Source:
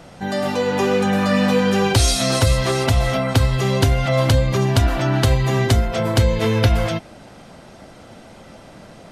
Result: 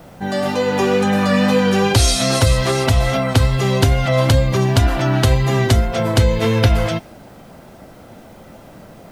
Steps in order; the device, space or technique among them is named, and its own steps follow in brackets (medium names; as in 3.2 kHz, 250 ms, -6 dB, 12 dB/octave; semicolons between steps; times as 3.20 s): plain cassette with noise reduction switched in (tape noise reduction on one side only decoder only; wow and flutter 24 cents; white noise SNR 41 dB); trim +2 dB